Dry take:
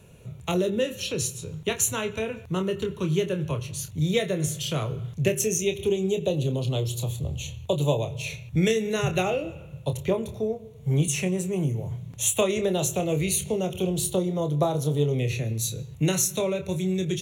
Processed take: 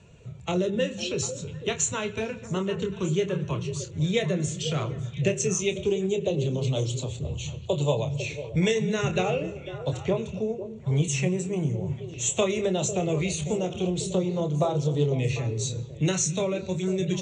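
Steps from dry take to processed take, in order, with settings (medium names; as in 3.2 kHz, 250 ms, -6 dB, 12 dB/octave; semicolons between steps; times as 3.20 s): coarse spectral quantiser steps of 15 dB; Chebyshev low-pass 8.6 kHz, order 8; repeats whose band climbs or falls 249 ms, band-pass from 160 Hz, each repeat 1.4 oct, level -6 dB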